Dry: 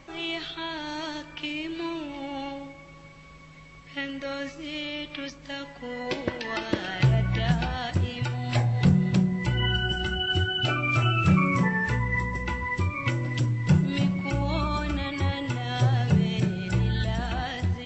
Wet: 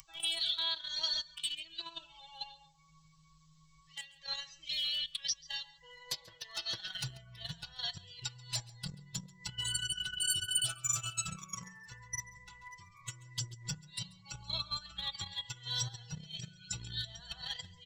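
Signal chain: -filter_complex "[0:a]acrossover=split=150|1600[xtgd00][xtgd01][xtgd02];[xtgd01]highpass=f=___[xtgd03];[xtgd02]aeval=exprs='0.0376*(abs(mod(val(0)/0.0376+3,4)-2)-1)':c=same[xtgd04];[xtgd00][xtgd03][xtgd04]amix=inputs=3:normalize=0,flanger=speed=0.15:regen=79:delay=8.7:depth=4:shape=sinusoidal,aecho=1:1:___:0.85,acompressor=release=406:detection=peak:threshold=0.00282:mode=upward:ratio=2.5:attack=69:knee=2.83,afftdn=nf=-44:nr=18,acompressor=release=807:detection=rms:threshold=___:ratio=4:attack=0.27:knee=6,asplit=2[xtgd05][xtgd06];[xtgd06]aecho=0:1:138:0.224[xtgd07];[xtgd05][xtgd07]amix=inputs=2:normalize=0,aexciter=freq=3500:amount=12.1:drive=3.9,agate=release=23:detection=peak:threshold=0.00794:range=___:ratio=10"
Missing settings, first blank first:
890, 6.1, 0.0126, 0.316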